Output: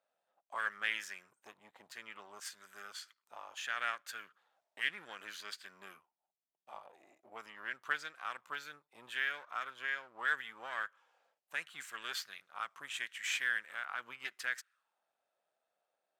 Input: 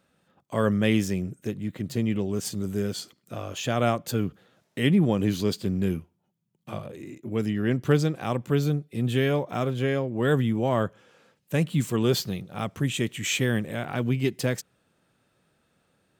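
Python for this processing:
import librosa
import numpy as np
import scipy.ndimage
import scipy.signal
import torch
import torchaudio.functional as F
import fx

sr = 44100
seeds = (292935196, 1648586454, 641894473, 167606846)

y = np.where(x < 0.0, 10.0 ** (-7.0 / 20.0) * x, x)
y = librosa.effects.preemphasis(y, coef=0.97, zi=[0.0])
y = fx.auto_wah(y, sr, base_hz=660.0, top_hz=1600.0, q=4.0, full_db=-42.5, direction='up')
y = y * 10.0 ** (16.0 / 20.0)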